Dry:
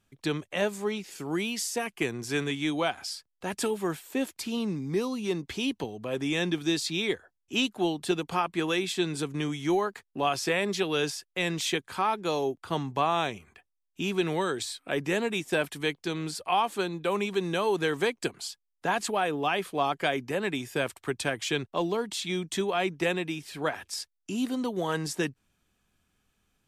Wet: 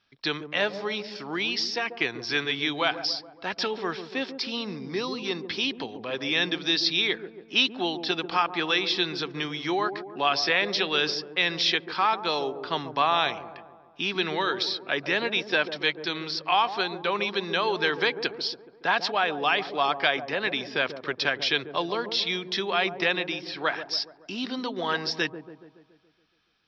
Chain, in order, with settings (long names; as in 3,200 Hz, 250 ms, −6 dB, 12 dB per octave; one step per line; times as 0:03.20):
Chebyshev low-pass with heavy ripple 5,500 Hz, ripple 3 dB
spectral tilt +3 dB per octave
on a send: delay with a low-pass on its return 141 ms, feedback 55%, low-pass 670 Hz, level −7.5 dB
on the sum: level +4.5 dB